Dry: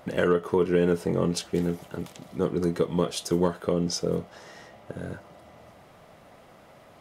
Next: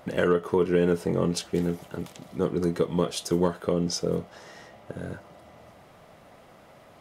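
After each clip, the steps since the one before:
no processing that can be heard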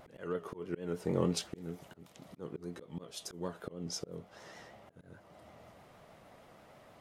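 volume swells 409 ms
pitch vibrato 6.4 Hz 73 cents
level −5.5 dB

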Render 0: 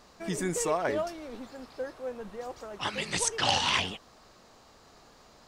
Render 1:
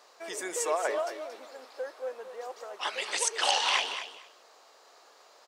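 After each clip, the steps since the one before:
high-pass filter 430 Hz 24 dB per octave
on a send: repeating echo 228 ms, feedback 16%, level −10.5 dB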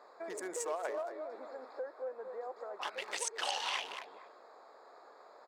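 adaptive Wiener filter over 15 samples
downward compressor 2 to 1, threshold −47 dBFS, peak gain reduction 14 dB
level +3.5 dB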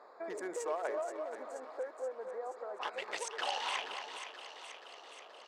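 high-shelf EQ 5,000 Hz −11.5 dB
feedback echo with a high-pass in the loop 478 ms, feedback 68%, high-pass 970 Hz, level −8.5 dB
level +1.5 dB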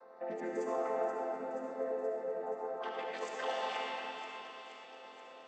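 channel vocoder with a chord as carrier major triad, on F3
comb and all-pass reverb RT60 3.1 s, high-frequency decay 0.75×, pre-delay 30 ms, DRR −2.5 dB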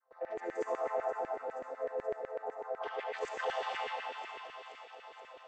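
noise gate with hold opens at −46 dBFS
auto-filter high-pass saw down 8 Hz 350–2,000 Hz
level −2.5 dB

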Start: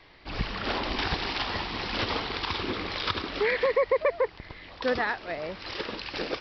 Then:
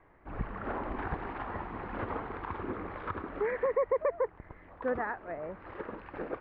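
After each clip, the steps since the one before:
low-pass filter 1,600 Hz 24 dB per octave
level −4.5 dB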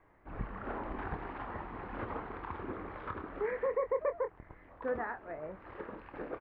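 double-tracking delay 26 ms −9 dB
level −4 dB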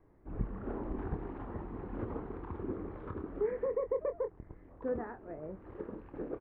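drawn EQ curve 400 Hz 0 dB, 610 Hz −8 dB, 2,100 Hz −16 dB
level +4 dB

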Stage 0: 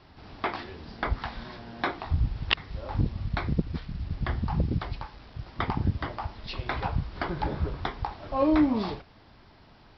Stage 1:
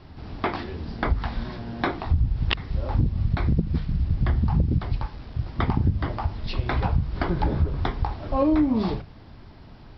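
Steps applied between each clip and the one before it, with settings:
low-shelf EQ 340 Hz +11 dB
mains-hum notches 50/100/150/200 Hz
downward compressor 4 to 1, threshold −20 dBFS, peak gain reduction 8.5 dB
level +2 dB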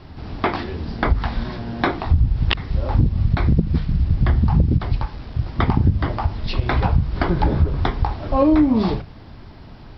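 every ending faded ahead of time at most 470 dB per second
level +5.5 dB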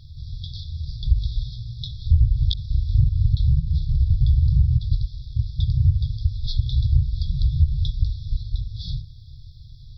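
linear-phase brick-wall band-stop 150–3,300 Hz

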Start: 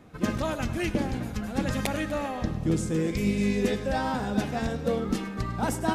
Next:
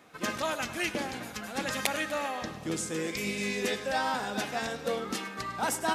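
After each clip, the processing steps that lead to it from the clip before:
high-pass filter 1,100 Hz 6 dB per octave
level +4 dB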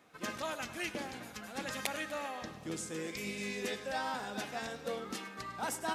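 surface crackle 14 per second −46 dBFS
level −7 dB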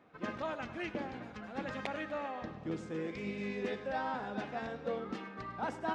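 head-to-tape spacing loss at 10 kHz 33 dB
level +3.5 dB

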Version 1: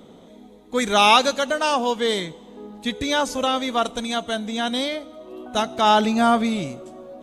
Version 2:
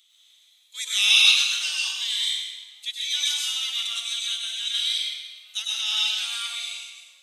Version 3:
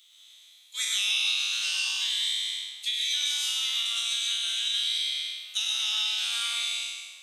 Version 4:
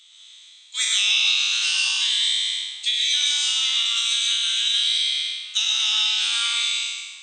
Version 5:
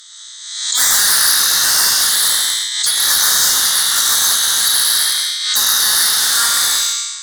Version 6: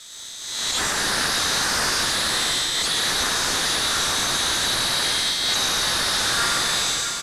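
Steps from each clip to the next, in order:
Chebyshev high-pass filter 2,900 Hz, order 3; convolution reverb RT60 1.5 s, pre-delay 94 ms, DRR −5 dB
peak hold with a decay on every bin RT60 1.10 s; high-pass filter 460 Hz 24 dB per octave; downward compressor 5 to 1, threshold −27 dBFS, peak gain reduction 16 dB; level +1.5 dB
brick-wall band-pass 770–8,900 Hz; level +7 dB
sine wavefolder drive 14 dB, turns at −7 dBFS; drawn EQ curve 570 Hz 0 dB, 1,200 Hz +11 dB, 1,800 Hz +14 dB, 2,500 Hz −14 dB, 4,500 Hz +12 dB; background raised ahead of every attack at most 51 dB per second; level −11.5 dB
variable-slope delta modulation 64 kbit/s; on a send: single-tap delay 650 ms −9.5 dB; on the sum: level −2 dB

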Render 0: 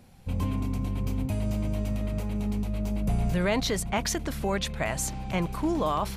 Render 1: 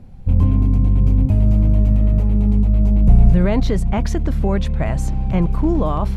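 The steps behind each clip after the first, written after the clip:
spectral tilt −3.5 dB per octave
level +2.5 dB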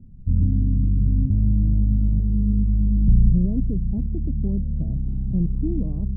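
transistor ladder low-pass 340 Hz, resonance 20%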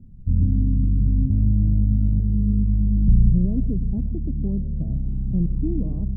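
convolution reverb RT60 0.45 s, pre-delay 102 ms, DRR 15.5 dB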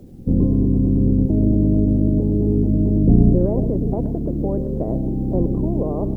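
ceiling on every frequency bin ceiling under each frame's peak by 30 dB
level +2.5 dB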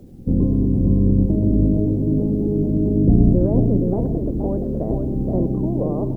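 single-tap delay 472 ms −5 dB
level −1 dB

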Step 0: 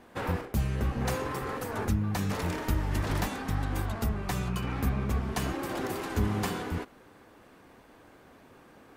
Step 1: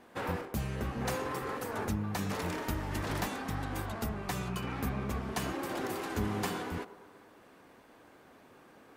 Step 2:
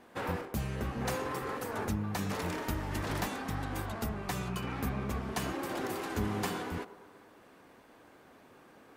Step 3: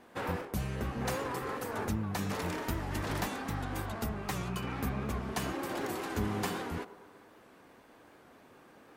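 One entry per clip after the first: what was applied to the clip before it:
low-shelf EQ 94 Hz −10.5 dB; delay with a band-pass on its return 115 ms, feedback 60%, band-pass 630 Hz, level −13 dB; level −2 dB
no processing that can be heard
wow of a warped record 78 rpm, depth 100 cents

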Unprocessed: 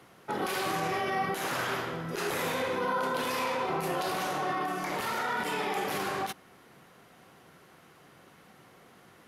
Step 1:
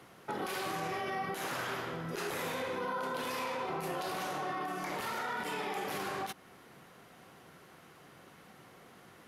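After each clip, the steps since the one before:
downward compressor 2 to 1, threshold −38 dBFS, peak gain reduction 7 dB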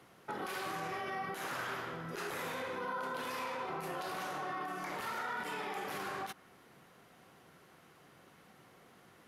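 dynamic equaliser 1,400 Hz, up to +4 dB, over −53 dBFS, Q 1.2
level −4.5 dB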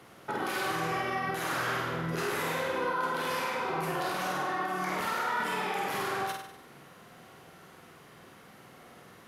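flutter between parallel walls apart 8.4 metres, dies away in 0.69 s
level +6 dB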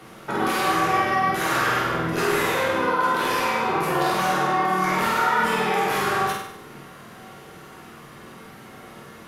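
convolution reverb RT60 0.45 s, pre-delay 5 ms, DRR 0 dB
level +6.5 dB

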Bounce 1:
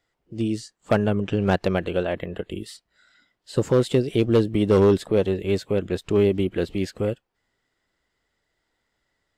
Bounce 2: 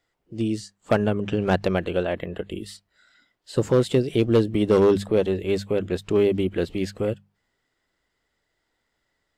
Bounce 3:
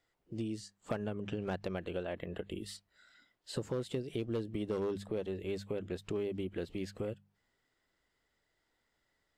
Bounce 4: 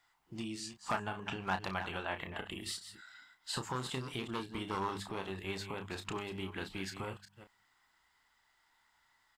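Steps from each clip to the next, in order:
mains-hum notches 50/100/150/200 Hz
downward compressor 3 to 1, threshold −33 dBFS, peak gain reduction 14 dB; level −4.5 dB
delay that plays each chunk backwards 186 ms, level −10.5 dB; low shelf with overshoot 690 Hz −9 dB, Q 3; double-tracking delay 31 ms −8 dB; level +6 dB

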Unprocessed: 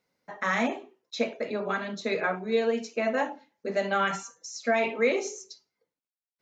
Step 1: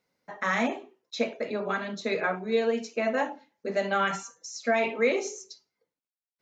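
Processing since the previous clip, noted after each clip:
no processing that can be heard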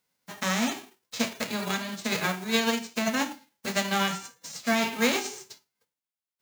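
spectral envelope flattened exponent 0.3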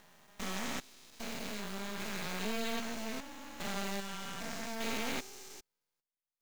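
spectrum averaged block by block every 400 ms
half-wave rectification
level −3 dB

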